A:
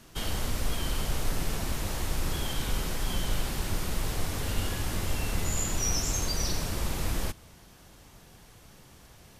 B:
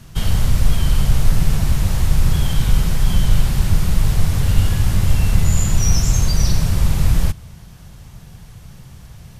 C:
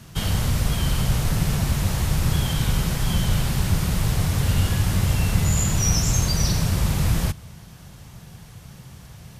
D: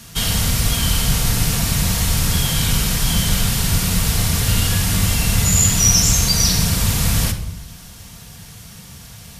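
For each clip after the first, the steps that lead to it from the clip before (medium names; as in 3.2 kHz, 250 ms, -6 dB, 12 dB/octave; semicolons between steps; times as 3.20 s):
resonant low shelf 210 Hz +10 dB, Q 1.5; trim +6 dB
high-pass 100 Hz 6 dB/octave
treble shelf 2.1 kHz +11.5 dB; simulated room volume 2100 m³, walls furnished, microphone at 1.7 m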